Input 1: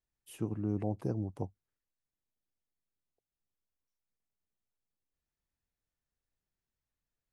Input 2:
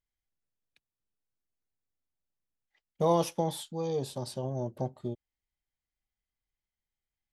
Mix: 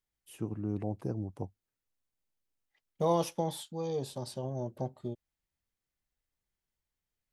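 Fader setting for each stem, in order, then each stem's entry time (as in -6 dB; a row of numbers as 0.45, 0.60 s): -1.0, -2.5 dB; 0.00, 0.00 s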